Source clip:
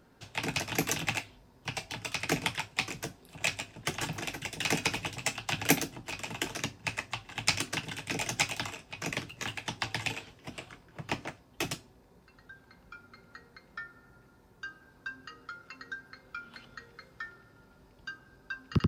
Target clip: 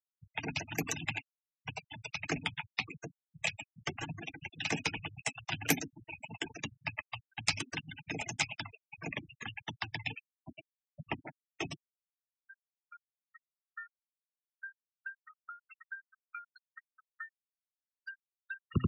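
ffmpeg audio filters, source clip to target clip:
-af "bandreject=f=127.4:t=h:w=4,bandreject=f=254.8:t=h:w=4,afftfilt=real='re*gte(hypot(re,im),0.0316)':imag='im*gte(hypot(re,im),0.0316)':win_size=1024:overlap=0.75,adynamicequalizer=threshold=0.00282:dfrequency=600:dqfactor=0.91:tfrequency=600:tqfactor=0.91:attack=5:release=100:ratio=0.375:range=3:mode=cutabove:tftype=bell,volume=-3dB"

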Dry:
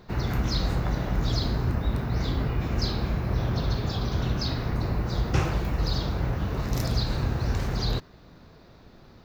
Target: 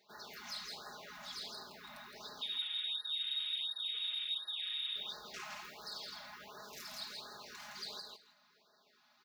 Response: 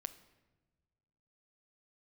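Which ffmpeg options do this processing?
-filter_complex "[0:a]highpass=f=56:p=1,asoftclip=type=hard:threshold=-22.5dB,asettb=1/sr,asplit=3[a][b][c];[a]atrim=end=2.414[d];[b]atrim=start=2.41:end=4.96,asetpts=PTS-STARTPTS,afade=t=in:d=0.004:c=qsin,afade=t=out:st=2.546:d=0.004:c=qsin,lowpass=f=3.2k:t=q:w=0.5098,lowpass=f=3.2k:t=q:w=0.6013,lowpass=f=3.2k:t=q:w=0.9,lowpass=f=3.2k:t=q:w=2.563,afreqshift=-3800[e];[c]atrim=start=4.956[f];[d][e]acrossfade=d=0.004:c1=hsin:c2=qsin[g];[g][f]acrossfade=d=0.004:c1=qsin:c2=hsin,aderivative,aecho=1:1:164|328|492:0.596|0.0953|0.0152,asplit=2[h][i];[i]highpass=f=720:p=1,volume=12dB,asoftclip=type=tanh:threshold=-19dB[j];[h][j]amix=inputs=2:normalize=0,lowpass=f=1k:p=1,volume=-6dB,aecho=1:1:4.8:0.83,afftfilt=real='re*(1-between(b*sr/1024,370*pow(2700/370,0.5+0.5*sin(2*PI*1.4*pts/sr))/1.41,370*pow(2700/370,0.5+0.5*sin(2*PI*1.4*pts/sr))*1.41))':imag='im*(1-between(b*sr/1024,370*pow(2700/370,0.5+0.5*sin(2*PI*1.4*pts/sr))/1.41,370*pow(2700/370,0.5+0.5*sin(2*PI*1.4*pts/sr))*1.41))':win_size=1024:overlap=0.75,volume=-2dB"

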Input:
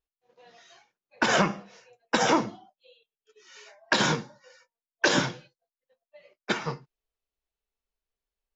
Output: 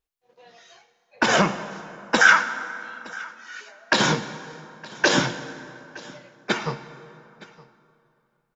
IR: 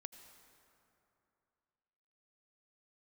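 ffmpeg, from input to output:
-filter_complex "[0:a]asettb=1/sr,asplit=3[a][b][c];[a]atrim=end=2.214[d];[b]atrim=start=2.21:end=3.61,asetpts=PTS-STARTPTS,afade=t=in:d=0.004:c=qsin,afade=t=out:st=1.396:d=0.004:c=qsin,highpass=f=1.5k:t=q:w=7.7[e];[c]atrim=start=3.606[f];[d][e]acrossfade=d=0.004:c1=hsin:c2=qsin[g];[g][f]acrossfade=d=0.004:c1=qsin:c2=hsin,aecho=1:1:916:0.0841,asplit=2[h][i];[1:a]atrim=start_sample=2205[j];[i][j]afir=irnorm=-1:irlink=0,volume=10dB[k];[h][k]amix=inputs=2:normalize=0,volume=-4.5dB"

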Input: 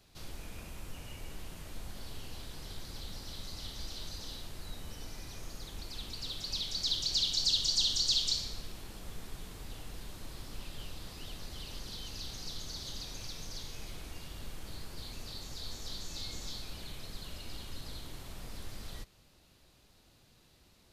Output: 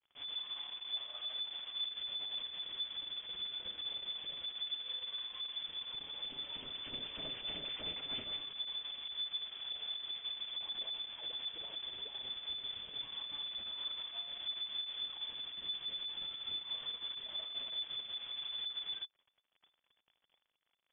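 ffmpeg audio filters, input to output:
-filter_complex "[0:a]equalizer=f=500:t=o:w=2.4:g=-5,asplit=2[a][b];[b]acompressor=threshold=-44dB:ratio=6,volume=0dB[c];[a][c]amix=inputs=2:normalize=0,flanger=delay=6.7:depth=1.7:regen=-20:speed=0.22:shape=triangular,aeval=exprs='(tanh(50.1*val(0)+0.6)-tanh(0.6))/50.1':c=same,acrusher=bits=8:mix=0:aa=0.5,lowpass=f=3k:t=q:w=0.5098,lowpass=f=3k:t=q:w=0.6013,lowpass=f=3k:t=q:w=0.9,lowpass=f=3k:t=q:w=2.563,afreqshift=-3500,volume=1dB"

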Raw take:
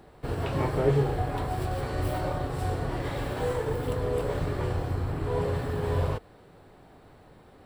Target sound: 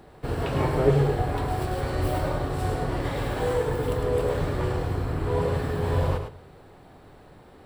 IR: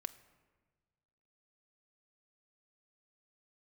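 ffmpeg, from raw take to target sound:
-filter_complex "[0:a]asplit=2[a][b];[1:a]atrim=start_sample=2205,asetrate=70560,aresample=44100,adelay=105[c];[b][c]afir=irnorm=-1:irlink=0,volume=0dB[d];[a][d]amix=inputs=2:normalize=0,volume=2.5dB"

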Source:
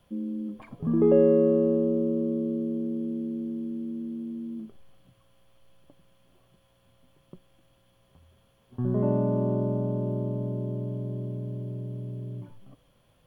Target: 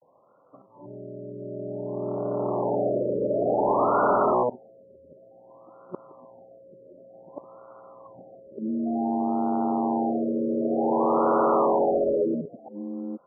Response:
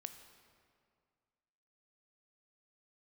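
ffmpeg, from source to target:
-filter_complex "[0:a]areverse,dynaudnorm=f=380:g=11:m=13.5dB,asplit=2[a][b];[b]aeval=exprs='0.841*sin(PI/2*8.91*val(0)/0.841)':c=same,volume=-10dB[c];[a][c]amix=inputs=2:normalize=0,highpass=470,lowpass=2.2k,asoftclip=type=hard:threshold=-10.5dB,afftfilt=real='re*lt(b*sr/1024,600*pow(1500/600,0.5+0.5*sin(2*PI*0.55*pts/sr)))':imag='im*lt(b*sr/1024,600*pow(1500/600,0.5+0.5*sin(2*PI*0.55*pts/sr)))':win_size=1024:overlap=0.75,volume=-4dB"

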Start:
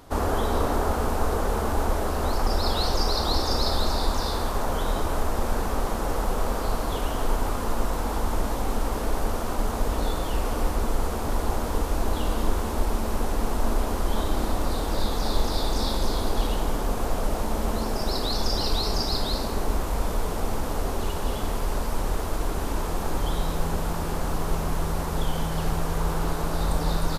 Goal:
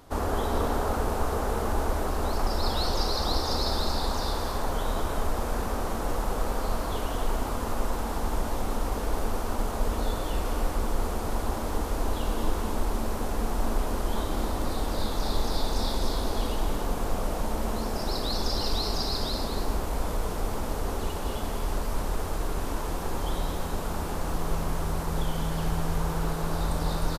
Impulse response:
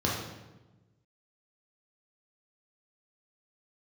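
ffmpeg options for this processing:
-af "aecho=1:1:209.9|271.1:0.355|0.282,volume=-3.5dB"

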